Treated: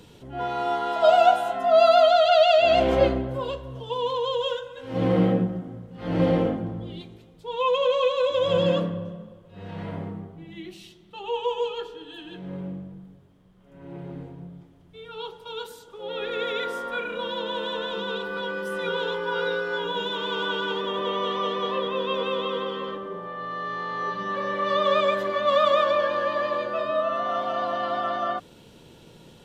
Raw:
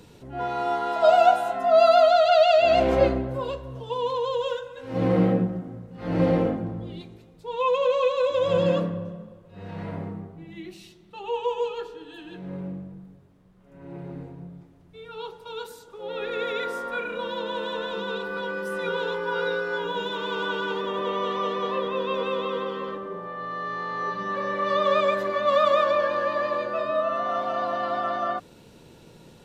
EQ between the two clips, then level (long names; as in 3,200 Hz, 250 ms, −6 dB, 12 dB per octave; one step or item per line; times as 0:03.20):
parametric band 3,200 Hz +8.5 dB 0.21 octaves
0.0 dB